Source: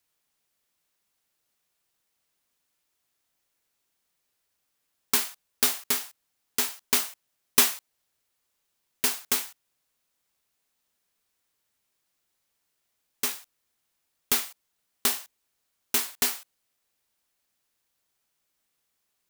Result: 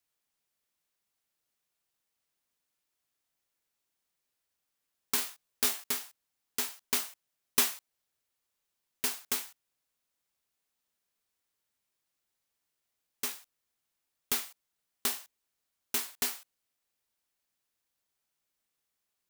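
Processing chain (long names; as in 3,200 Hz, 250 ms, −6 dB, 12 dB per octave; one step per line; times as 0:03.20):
0:05.16–0:05.84: double-tracking delay 19 ms −4 dB
level −6.5 dB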